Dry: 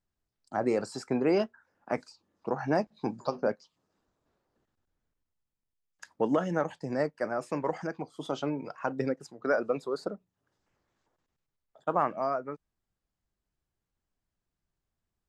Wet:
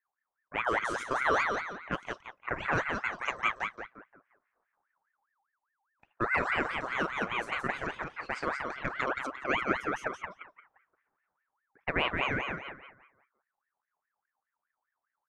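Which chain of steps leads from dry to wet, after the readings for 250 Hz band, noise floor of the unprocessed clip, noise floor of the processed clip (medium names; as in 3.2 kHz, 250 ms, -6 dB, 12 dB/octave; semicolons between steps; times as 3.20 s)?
-7.0 dB, under -85 dBFS, under -85 dBFS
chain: feedback delay 174 ms, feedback 38%, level -4.5 dB; level-controlled noise filter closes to 640 Hz, open at -26.5 dBFS; ring modulator with a swept carrier 1.3 kHz, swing 40%, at 4.9 Hz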